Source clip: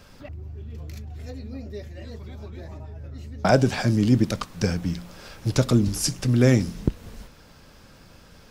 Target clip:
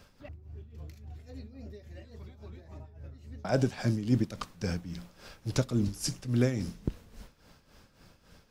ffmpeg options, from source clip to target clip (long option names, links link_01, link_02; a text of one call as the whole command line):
ffmpeg -i in.wav -af "tremolo=f=3.6:d=0.7,volume=-6dB" out.wav